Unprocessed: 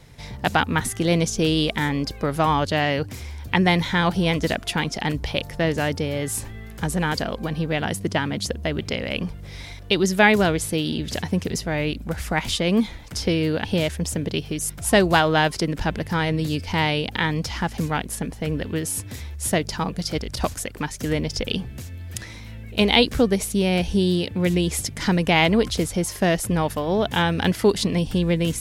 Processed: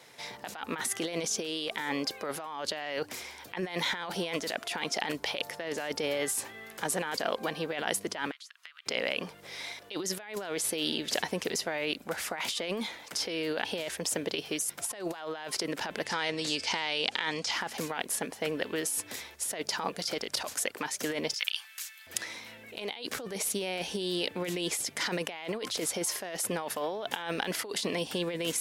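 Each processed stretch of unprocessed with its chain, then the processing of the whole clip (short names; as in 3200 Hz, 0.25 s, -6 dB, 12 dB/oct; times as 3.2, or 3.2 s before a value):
8.31–8.86 elliptic high-pass 1200 Hz, stop band 70 dB + high shelf 7000 Hz -8 dB + compressor, threshold -47 dBFS
16.05–17.51 LPF 8200 Hz 24 dB/oct + high shelf 2900 Hz +9.5 dB + compressor, threshold -21 dBFS
21.34–22.07 HPF 1200 Hz 24 dB/oct + tilt +1.5 dB/oct
whole clip: HPF 460 Hz 12 dB/oct; negative-ratio compressor -30 dBFS, ratio -1; gain -3.5 dB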